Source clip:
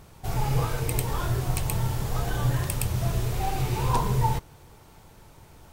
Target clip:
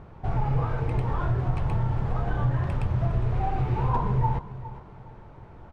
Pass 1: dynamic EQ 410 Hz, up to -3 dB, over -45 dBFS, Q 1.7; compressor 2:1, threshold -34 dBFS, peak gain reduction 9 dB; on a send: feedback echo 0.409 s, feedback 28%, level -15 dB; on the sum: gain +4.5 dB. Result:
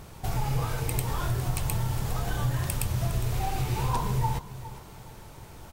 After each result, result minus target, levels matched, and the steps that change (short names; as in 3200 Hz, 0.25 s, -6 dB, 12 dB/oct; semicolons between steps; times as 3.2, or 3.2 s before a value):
2000 Hz band +4.5 dB; compressor: peak gain reduction +3 dB
add after dynamic EQ: LPF 1500 Hz 12 dB/oct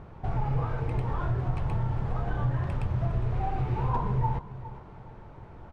compressor: peak gain reduction +3 dB
change: compressor 2:1, threshold -28 dBFS, peak gain reduction 5.5 dB